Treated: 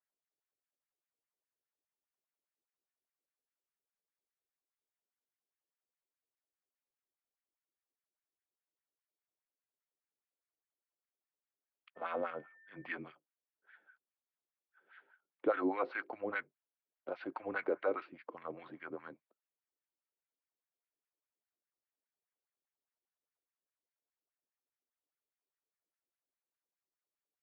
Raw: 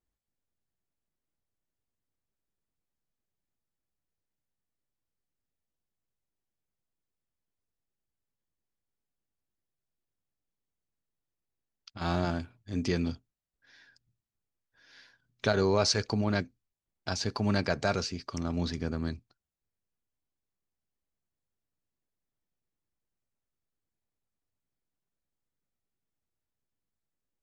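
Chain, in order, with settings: wah-wah 4.9 Hz 460–2100 Hz, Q 2.4; 11.95–12.94 s: whistle 1.9 kHz -62 dBFS; mistuned SSB -110 Hz 380–3200 Hz; trim +1.5 dB

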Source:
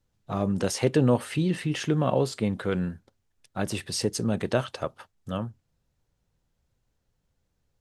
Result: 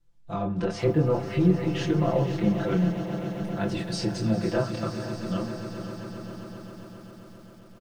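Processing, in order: chorus voices 2, 0.55 Hz, delay 25 ms, depth 3.6 ms; low-pass that closes with the level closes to 1.4 kHz, closed at -23 dBFS; bass shelf 82 Hz +12 dB; comb 5.9 ms, depth 86%; echo with a slow build-up 133 ms, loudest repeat 5, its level -15 dB; on a send at -10.5 dB: reverberation RT60 0.40 s, pre-delay 3 ms; on the sum: bit-crushed delay 490 ms, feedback 55%, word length 8-bit, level -13 dB; trim -1 dB

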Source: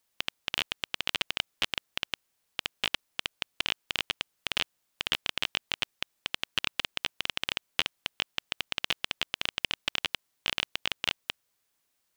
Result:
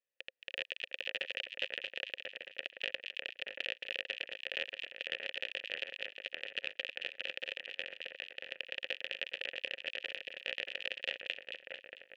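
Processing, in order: level rider; vowel filter e; two-band feedback delay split 2.2 kHz, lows 630 ms, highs 223 ms, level -4.5 dB; trim -2.5 dB

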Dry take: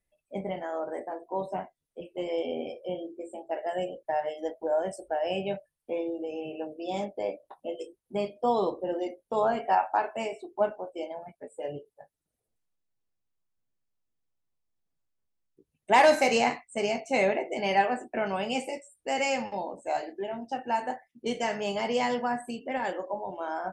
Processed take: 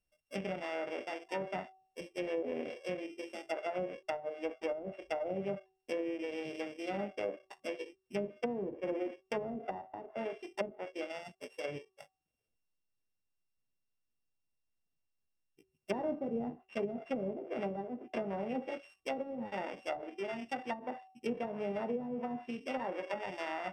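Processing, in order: sorted samples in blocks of 16 samples; low-pass that closes with the level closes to 330 Hz, closed at -23.5 dBFS; de-hum 378.9 Hz, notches 3; trim -4 dB

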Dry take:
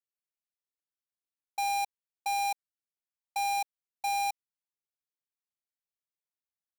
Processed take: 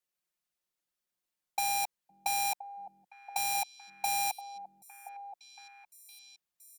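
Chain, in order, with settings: comb 5.6 ms, depth 63%; on a send: repeats whose band climbs or falls 512 ms, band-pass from 220 Hz, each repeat 1.4 oct, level -6 dB; on the sum: trim +5 dB

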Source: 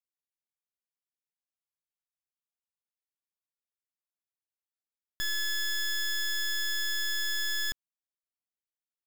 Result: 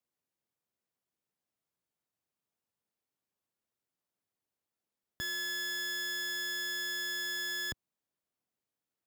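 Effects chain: high-pass 91 Hz; tilt shelf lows +6 dB; peak limiter -35 dBFS, peak gain reduction 8.5 dB; trim +7.5 dB

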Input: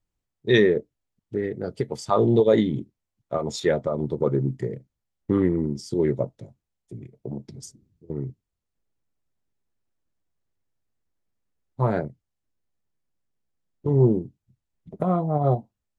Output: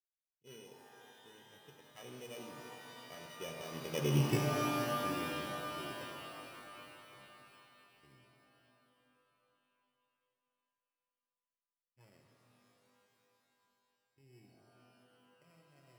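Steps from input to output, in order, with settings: sorted samples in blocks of 16 samples; Doppler pass-by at 4.25 s, 23 m/s, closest 1.3 m; pitch-shifted reverb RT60 3.4 s, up +12 st, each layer -2 dB, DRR 1.5 dB; trim -1 dB

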